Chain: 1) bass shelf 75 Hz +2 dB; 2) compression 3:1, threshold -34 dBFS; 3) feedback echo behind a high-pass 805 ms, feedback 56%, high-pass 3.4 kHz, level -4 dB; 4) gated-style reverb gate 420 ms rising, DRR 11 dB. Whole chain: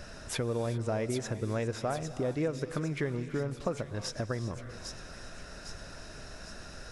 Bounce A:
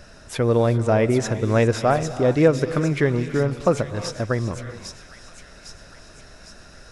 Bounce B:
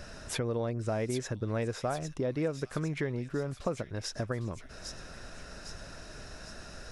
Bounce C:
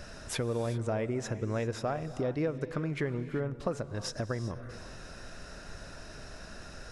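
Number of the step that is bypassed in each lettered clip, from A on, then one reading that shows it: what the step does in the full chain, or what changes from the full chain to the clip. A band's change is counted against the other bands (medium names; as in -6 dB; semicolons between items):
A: 2, mean gain reduction 7.0 dB; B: 4, echo-to-direct -9.0 dB to -13.0 dB; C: 3, echo-to-direct -9.0 dB to -11.0 dB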